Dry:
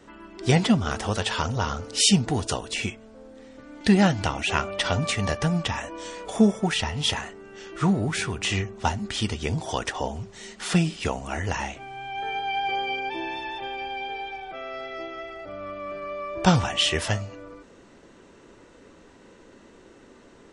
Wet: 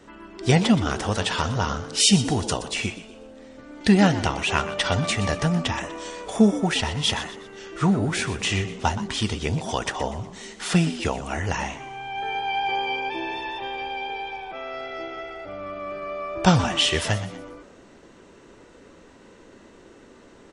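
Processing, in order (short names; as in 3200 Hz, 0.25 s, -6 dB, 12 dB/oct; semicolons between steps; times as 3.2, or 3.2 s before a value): frequency-shifting echo 0.122 s, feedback 40%, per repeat +79 Hz, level -13.5 dB; gain +1.5 dB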